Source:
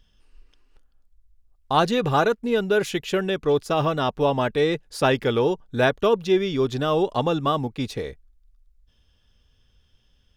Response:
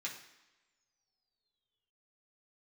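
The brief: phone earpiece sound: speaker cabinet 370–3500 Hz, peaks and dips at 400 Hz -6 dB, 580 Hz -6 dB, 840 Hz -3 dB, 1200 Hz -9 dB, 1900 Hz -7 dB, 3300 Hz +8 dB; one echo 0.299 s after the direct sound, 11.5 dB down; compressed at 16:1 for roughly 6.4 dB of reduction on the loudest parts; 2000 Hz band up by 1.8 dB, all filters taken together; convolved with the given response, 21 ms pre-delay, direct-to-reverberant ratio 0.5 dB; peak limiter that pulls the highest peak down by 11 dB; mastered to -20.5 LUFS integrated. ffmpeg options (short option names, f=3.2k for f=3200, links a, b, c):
-filter_complex "[0:a]equalizer=f=2k:t=o:g=7.5,acompressor=threshold=-19dB:ratio=16,alimiter=limit=-21dB:level=0:latency=1,aecho=1:1:299:0.266,asplit=2[a][b];[1:a]atrim=start_sample=2205,adelay=21[c];[b][c]afir=irnorm=-1:irlink=0,volume=-1dB[d];[a][d]amix=inputs=2:normalize=0,highpass=370,equalizer=f=400:t=q:w=4:g=-6,equalizer=f=580:t=q:w=4:g=-6,equalizer=f=840:t=q:w=4:g=-3,equalizer=f=1.2k:t=q:w=4:g=-9,equalizer=f=1.9k:t=q:w=4:g=-7,equalizer=f=3.3k:t=q:w=4:g=8,lowpass=f=3.5k:w=0.5412,lowpass=f=3.5k:w=1.3066,volume=12dB"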